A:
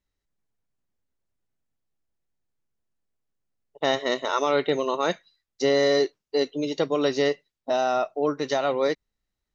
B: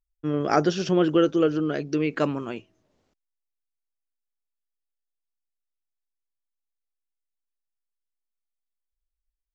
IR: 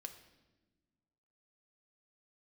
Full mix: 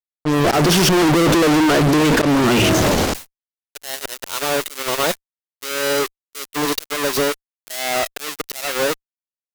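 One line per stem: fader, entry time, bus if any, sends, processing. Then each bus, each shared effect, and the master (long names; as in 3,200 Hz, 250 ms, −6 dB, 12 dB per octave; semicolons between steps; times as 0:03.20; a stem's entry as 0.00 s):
−11.0 dB, 0.00 s, no send, each half-wave held at its own peak; spectral tilt +3 dB per octave; downward compressor 10 to 1, threshold −19 dBFS, peak gain reduction 10.5 dB
+2.5 dB, 0.00 s, no send, level that may fall only so fast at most 24 dB per second; automatic ducking −16 dB, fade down 0.90 s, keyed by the first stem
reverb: not used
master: volume swells 337 ms; fuzz pedal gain 46 dB, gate −46 dBFS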